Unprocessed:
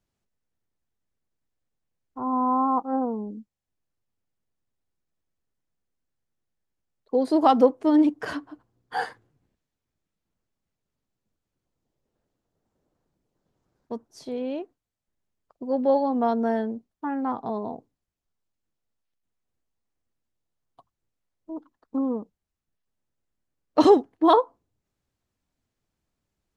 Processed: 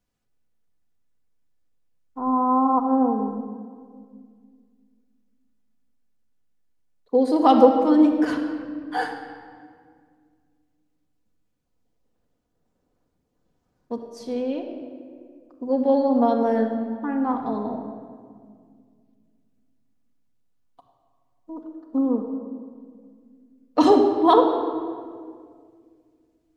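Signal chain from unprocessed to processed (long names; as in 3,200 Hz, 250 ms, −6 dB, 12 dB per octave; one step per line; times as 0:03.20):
rectangular room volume 3,700 cubic metres, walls mixed, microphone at 1.9 metres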